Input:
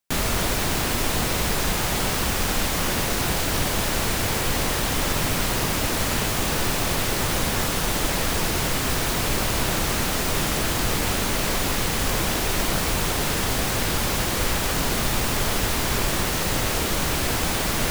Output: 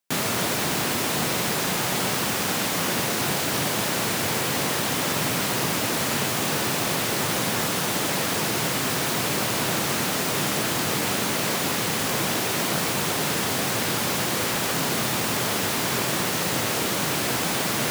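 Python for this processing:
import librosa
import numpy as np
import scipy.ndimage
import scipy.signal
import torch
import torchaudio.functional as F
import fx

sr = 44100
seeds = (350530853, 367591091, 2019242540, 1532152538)

y = scipy.signal.sosfilt(scipy.signal.butter(4, 120.0, 'highpass', fs=sr, output='sos'), x)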